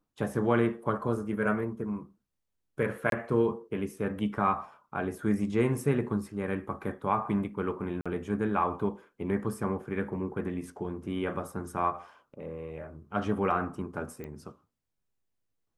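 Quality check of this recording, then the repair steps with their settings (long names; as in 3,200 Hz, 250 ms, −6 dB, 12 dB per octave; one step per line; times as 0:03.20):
0:03.10–0:03.12: drop-out 22 ms
0:08.01–0:08.06: drop-out 46 ms
0:14.24: click −27 dBFS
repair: click removal
repair the gap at 0:03.10, 22 ms
repair the gap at 0:08.01, 46 ms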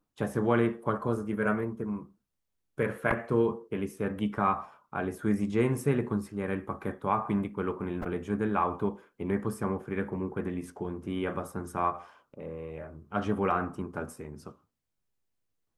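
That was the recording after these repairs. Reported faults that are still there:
0:14.24: click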